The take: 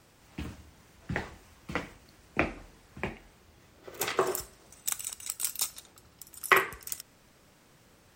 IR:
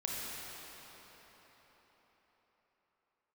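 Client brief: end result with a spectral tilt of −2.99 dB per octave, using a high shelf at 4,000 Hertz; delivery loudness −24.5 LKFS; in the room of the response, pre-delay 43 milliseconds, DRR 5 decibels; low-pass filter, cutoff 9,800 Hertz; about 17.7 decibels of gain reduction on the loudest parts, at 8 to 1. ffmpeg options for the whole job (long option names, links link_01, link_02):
-filter_complex "[0:a]lowpass=9800,highshelf=frequency=4000:gain=7,acompressor=threshold=-34dB:ratio=8,asplit=2[link_01][link_02];[1:a]atrim=start_sample=2205,adelay=43[link_03];[link_02][link_03]afir=irnorm=-1:irlink=0,volume=-9dB[link_04];[link_01][link_04]amix=inputs=2:normalize=0,volume=16dB"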